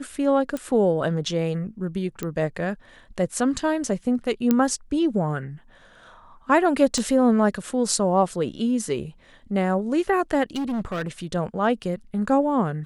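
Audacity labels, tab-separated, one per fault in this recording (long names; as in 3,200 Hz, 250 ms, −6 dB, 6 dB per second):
0.570000	0.570000	click −17 dBFS
2.230000	2.230000	click −14 dBFS
4.510000	4.510000	click −7 dBFS
6.980000	6.980000	click −15 dBFS
10.550000	11.080000	clipping −23.5 dBFS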